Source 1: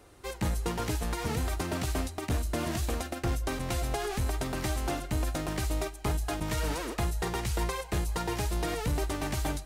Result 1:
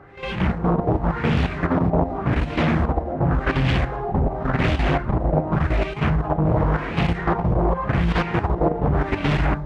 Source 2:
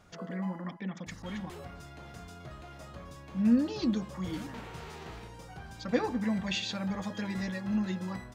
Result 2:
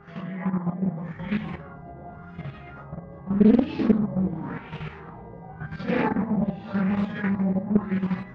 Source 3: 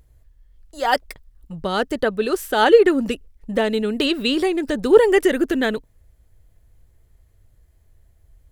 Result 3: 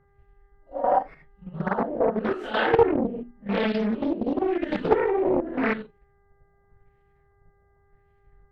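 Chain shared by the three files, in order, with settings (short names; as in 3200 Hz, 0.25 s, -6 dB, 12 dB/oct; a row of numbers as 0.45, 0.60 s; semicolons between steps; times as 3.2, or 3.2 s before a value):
phase scrambler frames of 0.2 s; bell 160 Hz +12 dB 0.78 oct; notches 60/120/180/240/300/360/420 Hz; level quantiser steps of 10 dB; LFO low-pass sine 0.89 Hz 650–2700 Hz; buzz 400 Hz, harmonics 5, -63 dBFS -5 dB/oct; Doppler distortion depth 0.6 ms; normalise peaks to -6 dBFS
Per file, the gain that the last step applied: +11.5, +7.0, -4.0 dB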